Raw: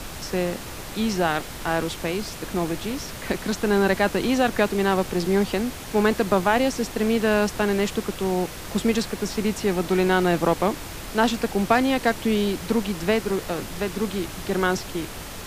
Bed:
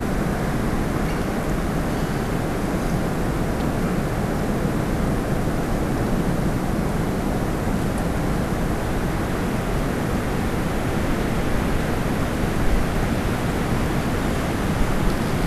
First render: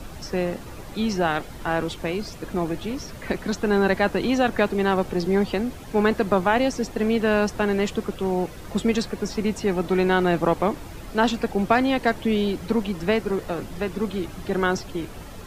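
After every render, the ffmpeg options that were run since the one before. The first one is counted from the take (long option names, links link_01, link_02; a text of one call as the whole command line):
ffmpeg -i in.wav -af "afftdn=noise_reduction=10:noise_floor=-36" out.wav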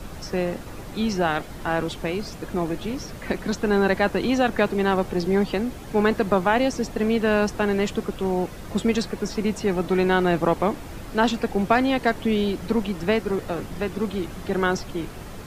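ffmpeg -i in.wav -i bed.wav -filter_complex "[1:a]volume=-20.5dB[link_01];[0:a][link_01]amix=inputs=2:normalize=0" out.wav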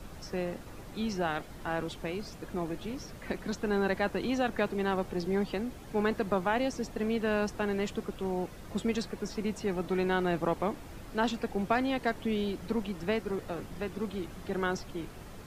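ffmpeg -i in.wav -af "volume=-9dB" out.wav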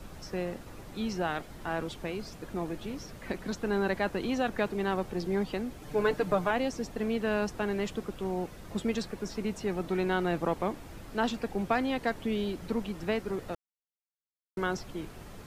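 ffmpeg -i in.wav -filter_complex "[0:a]asettb=1/sr,asplit=3[link_01][link_02][link_03];[link_01]atrim=end=5.814[link_04];[link_02]atrim=start=5.81:end=6.51,asetpts=PTS-STARTPTS,afade=type=in:duration=0.004:curve=qsin,afade=type=out:start_time=0.696:duration=0.004:curve=qsin,aecho=1:1:6.7:0.74,atrim=end_sample=30870[link_05];[link_03]atrim=start=6.506[link_06];[link_04][link_05]acrossfade=duration=0.004:curve1=hsin:curve2=qsin[link_07];[link_07][link_06]acrossfade=duration=0.004:curve1=qsin:curve2=hsin,asplit=3[link_08][link_09][link_10];[link_08]atrim=end=13.55,asetpts=PTS-STARTPTS,afade=type=out:start_time=13.546:duration=0.004:curve=hsin[link_11];[link_09]atrim=start=13.55:end=14.57,asetpts=PTS-STARTPTS,volume=0[link_12];[link_10]atrim=start=14.57,asetpts=PTS-STARTPTS,afade=type=in:duration=0.004:curve=hsin[link_13];[link_11][link_12][link_13]concat=n=3:v=0:a=1" out.wav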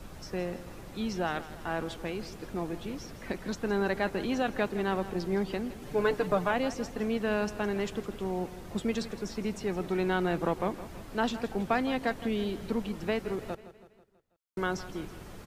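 ffmpeg -i in.wav -af "aecho=1:1:163|326|489|652|815:0.178|0.0925|0.0481|0.025|0.013" out.wav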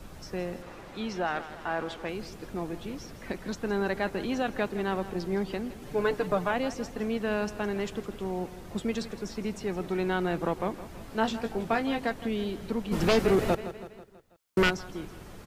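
ffmpeg -i in.wav -filter_complex "[0:a]asettb=1/sr,asplit=3[link_01][link_02][link_03];[link_01]atrim=end=0.624[link_04];[link_02]atrim=start=0.62:end=2.09,asetpts=PTS-STARTPTS,afade=type=in:duration=0.004:curve=qsin,afade=type=out:start_time=1.466:duration=0.004:curve=qsin,asplit=2[link_05][link_06];[link_06]highpass=frequency=720:poles=1,volume=11dB,asoftclip=type=tanh:threshold=-17dB[link_07];[link_05][link_07]amix=inputs=2:normalize=0,lowpass=frequency=2200:poles=1,volume=-6dB[link_08];[link_03]atrim=start=2.086[link_09];[link_04][link_08]acrossfade=duration=0.004:curve1=hsin:curve2=qsin[link_10];[link_10][link_09]acrossfade=duration=0.004:curve1=qsin:curve2=hsin,asettb=1/sr,asplit=3[link_11][link_12][link_13];[link_11]atrim=end=10.994[link_14];[link_12]atrim=start=10.99:end=12.07,asetpts=PTS-STARTPTS,afade=type=in:duration=0.004:curve=qsin,afade=type=out:start_time=1.076:duration=0.004:curve=qsin,asplit=2[link_15][link_16];[link_16]adelay=18,volume=-6dB[link_17];[link_15][link_17]amix=inputs=2:normalize=0,atrim=end_sample=47628[link_18];[link_13]atrim=start=12.066[link_19];[link_14][link_18]acrossfade=duration=0.004:curve1=hsin:curve2=qsin[link_20];[link_20][link_19]acrossfade=duration=0.004:curve1=qsin:curve2=hsin,asplit=3[link_21][link_22][link_23];[link_21]afade=type=out:start_time=12.91:duration=0.02[link_24];[link_22]aeval=exprs='0.15*sin(PI/2*2.82*val(0)/0.15)':channel_layout=same,afade=type=in:start_time=12.91:duration=0.02,afade=type=out:start_time=14.69:duration=0.02[link_25];[link_23]afade=type=in:start_time=14.69:duration=0.02[link_26];[link_24][link_25][link_26]amix=inputs=3:normalize=0" out.wav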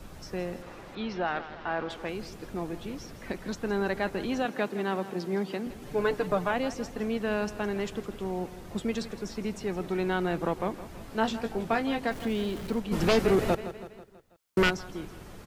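ffmpeg -i in.wav -filter_complex "[0:a]asettb=1/sr,asplit=3[link_01][link_02][link_03];[link_01]atrim=end=0.954[link_04];[link_02]atrim=start=0.95:end=1.9,asetpts=PTS-STARTPTS,afade=type=in:duration=0.004:curve=qsin,afade=type=out:start_time=0.946:duration=0.004:curve=qsin,lowpass=frequency=5000:width=0.5412,lowpass=frequency=5000:width=1.3066[link_05];[link_03]atrim=start=1.896[link_06];[link_04][link_05]acrossfade=duration=0.004:curve1=hsin:curve2=qsin[link_07];[link_07][link_06]acrossfade=duration=0.004:curve1=qsin:curve2=hsin,asettb=1/sr,asplit=3[link_08][link_09][link_10];[link_08]atrim=end=4.454[link_11];[link_09]atrim=start=4.45:end=5.67,asetpts=PTS-STARTPTS,afade=type=in:duration=0.004:curve=qsin,afade=type=out:start_time=1.216:duration=0.004:curve=qsin,highpass=frequency=150:width=0.5412,highpass=frequency=150:width=1.3066[link_12];[link_10]atrim=start=5.666[link_13];[link_11][link_12]acrossfade=duration=0.004:curve1=hsin:curve2=qsin[link_14];[link_14][link_13]acrossfade=duration=0.004:curve1=qsin:curve2=hsin,asettb=1/sr,asplit=3[link_15][link_16][link_17];[link_15]atrim=end=12.114[link_18];[link_16]atrim=start=12.11:end=12.8,asetpts=PTS-STARTPTS,afade=type=in:duration=0.004:curve=qsin,afade=type=out:start_time=0.686:duration=0.004:curve=qsin,aeval=exprs='val(0)+0.5*0.00944*sgn(val(0))':channel_layout=same[link_19];[link_17]atrim=start=12.796[link_20];[link_18][link_19]acrossfade=duration=0.004:curve1=hsin:curve2=qsin[link_21];[link_21][link_20]acrossfade=duration=0.004:curve1=qsin:curve2=hsin" out.wav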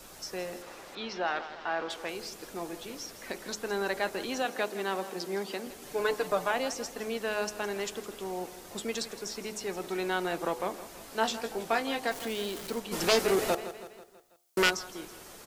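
ffmpeg -i in.wav -af "bass=frequency=250:gain=-14,treble=frequency=4000:gain=9,bandreject=frequency=70.66:width_type=h:width=4,bandreject=frequency=141.32:width_type=h:width=4,bandreject=frequency=211.98:width_type=h:width=4,bandreject=frequency=282.64:width_type=h:width=4,bandreject=frequency=353.3:width_type=h:width=4,bandreject=frequency=423.96:width_type=h:width=4,bandreject=frequency=494.62:width_type=h:width=4,bandreject=frequency=565.28:width_type=h:width=4,bandreject=frequency=635.94:width_type=h:width=4,bandreject=frequency=706.6:width_type=h:width=4,bandreject=frequency=777.26:width_type=h:width=4,bandreject=frequency=847.92:width_type=h:width=4,bandreject=frequency=918.58:width_type=h:width=4,bandreject=frequency=989.24:width_type=h:width=4,bandreject=frequency=1059.9:width_type=h:width=4,bandreject=frequency=1130.56:width_type=h:width=4,bandreject=frequency=1201.22:width_type=h:width=4,bandreject=frequency=1271.88:width_type=h:width=4" out.wav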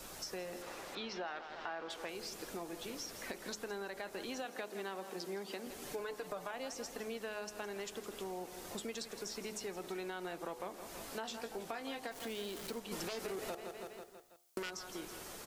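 ffmpeg -i in.wav -af "alimiter=limit=-19.5dB:level=0:latency=1:release=76,acompressor=threshold=-41dB:ratio=4" out.wav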